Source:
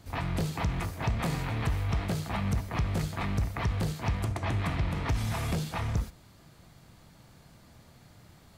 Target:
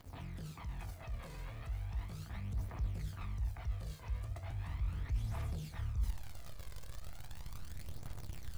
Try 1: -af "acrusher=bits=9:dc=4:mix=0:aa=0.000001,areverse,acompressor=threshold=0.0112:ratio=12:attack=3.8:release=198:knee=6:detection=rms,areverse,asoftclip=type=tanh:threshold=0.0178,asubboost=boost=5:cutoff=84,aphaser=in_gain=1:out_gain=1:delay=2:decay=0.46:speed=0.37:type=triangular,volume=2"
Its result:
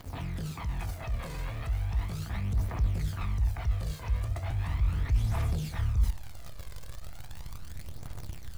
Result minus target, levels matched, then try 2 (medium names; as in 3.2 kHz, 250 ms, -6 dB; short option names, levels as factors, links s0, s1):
compression: peak gain reduction -11 dB
-af "acrusher=bits=9:dc=4:mix=0:aa=0.000001,areverse,acompressor=threshold=0.00282:ratio=12:attack=3.8:release=198:knee=6:detection=rms,areverse,asoftclip=type=tanh:threshold=0.0178,asubboost=boost=5:cutoff=84,aphaser=in_gain=1:out_gain=1:delay=2:decay=0.46:speed=0.37:type=triangular,volume=2"